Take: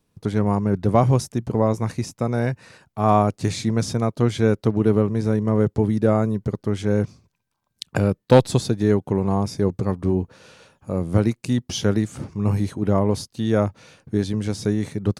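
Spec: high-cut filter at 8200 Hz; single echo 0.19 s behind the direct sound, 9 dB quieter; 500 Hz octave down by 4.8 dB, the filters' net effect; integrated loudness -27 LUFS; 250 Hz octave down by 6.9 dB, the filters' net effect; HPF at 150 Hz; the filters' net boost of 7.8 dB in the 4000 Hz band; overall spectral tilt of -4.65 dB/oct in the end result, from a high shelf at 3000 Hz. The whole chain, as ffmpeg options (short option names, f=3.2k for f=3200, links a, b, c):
-af "highpass=150,lowpass=8.2k,equalizer=f=250:t=o:g=-7,equalizer=f=500:t=o:g=-4,highshelf=f=3k:g=4.5,equalizer=f=4k:t=o:g=6.5,aecho=1:1:190:0.355,volume=-1dB"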